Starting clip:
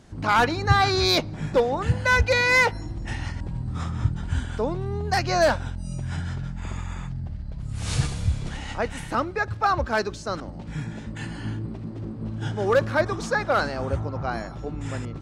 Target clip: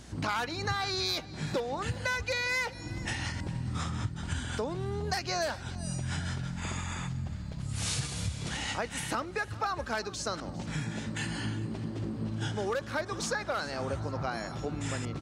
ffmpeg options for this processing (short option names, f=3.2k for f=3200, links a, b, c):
-filter_complex "[0:a]highpass=87,highshelf=f=2.2k:g=9,acompressor=threshold=-30dB:ratio=6,aeval=exprs='val(0)+0.00282*(sin(2*PI*60*n/s)+sin(2*PI*2*60*n/s)/2+sin(2*PI*3*60*n/s)/3+sin(2*PI*4*60*n/s)/4+sin(2*PI*5*60*n/s)/5)':c=same,asplit=2[a][b];[b]aecho=0:1:406|812|1218:0.112|0.0482|0.0207[c];[a][c]amix=inputs=2:normalize=0"